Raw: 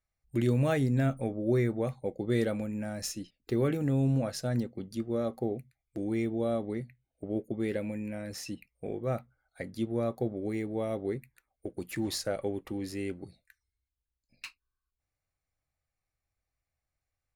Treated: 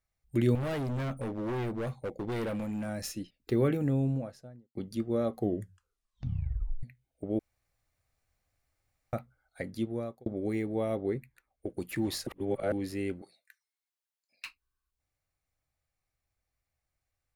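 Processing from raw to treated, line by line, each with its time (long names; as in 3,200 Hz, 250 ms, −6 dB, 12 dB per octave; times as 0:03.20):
0:00.55–0:02.89: gain into a clipping stage and back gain 32.5 dB
0:03.59–0:04.75: fade out and dull
0:05.33: tape stop 1.50 s
0:07.39–0:09.13: fill with room tone
0:09.73–0:10.26: fade out
0:10.96–0:11.69: high-shelf EQ 4,300 Hz −6.5 dB
0:12.27–0:12.72: reverse
0:13.22–0:14.45: high-pass filter 650 Hz
whole clip: dynamic equaliser 6,600 Hz, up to −6 dB, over −56 dBFS, Q 1; level +1.5 dB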